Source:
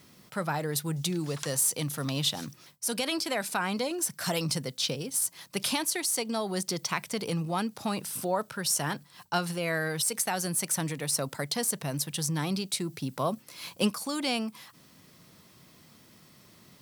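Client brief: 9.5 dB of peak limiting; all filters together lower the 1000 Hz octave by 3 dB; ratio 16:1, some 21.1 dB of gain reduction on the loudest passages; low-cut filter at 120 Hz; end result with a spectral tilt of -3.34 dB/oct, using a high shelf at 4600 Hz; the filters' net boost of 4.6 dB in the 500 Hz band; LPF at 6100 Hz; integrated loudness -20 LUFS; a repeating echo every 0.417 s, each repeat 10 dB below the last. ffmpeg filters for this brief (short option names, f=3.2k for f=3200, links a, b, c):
-af "highpass=120,lowpass=6.1k,equalizer=f=500:t=o:g=7.5,equalizer=f=1k:t=o:g=-8,highshelf=f=4.6k:g=8,acompressor=threshold=-42dB:ratio=16,alimiter=level_in=11.5dB:limit=-24dB:level=0:latency=1,volume=-11.5dB,aecho=1:1:417|834|1251|1668:0.316|0.101|0.0324|0.0104,volume=27dB"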